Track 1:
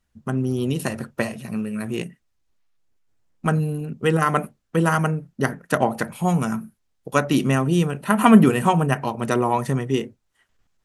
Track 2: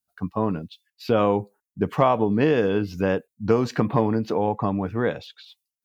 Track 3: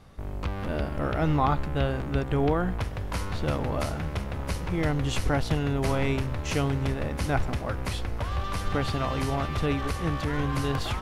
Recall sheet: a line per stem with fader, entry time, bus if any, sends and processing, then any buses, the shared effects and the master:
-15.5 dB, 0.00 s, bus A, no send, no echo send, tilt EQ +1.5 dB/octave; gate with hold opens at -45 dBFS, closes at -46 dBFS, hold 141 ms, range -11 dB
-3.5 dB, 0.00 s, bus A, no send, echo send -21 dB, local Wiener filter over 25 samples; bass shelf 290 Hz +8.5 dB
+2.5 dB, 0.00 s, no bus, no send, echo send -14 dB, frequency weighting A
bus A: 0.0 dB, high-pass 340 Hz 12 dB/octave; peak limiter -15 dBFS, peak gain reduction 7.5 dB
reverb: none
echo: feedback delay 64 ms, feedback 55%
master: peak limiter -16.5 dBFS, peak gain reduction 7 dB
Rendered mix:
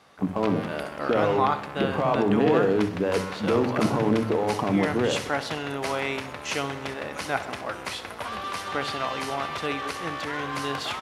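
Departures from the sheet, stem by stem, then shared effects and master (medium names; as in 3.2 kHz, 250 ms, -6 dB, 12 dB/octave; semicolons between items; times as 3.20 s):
stem 1 -15.5 dB -> -23.5 dB; stem 2 -3.5 dB -> +7.0 dB; master: missing peak limiter -16.5 dBFS, peak gain reduction 7 dB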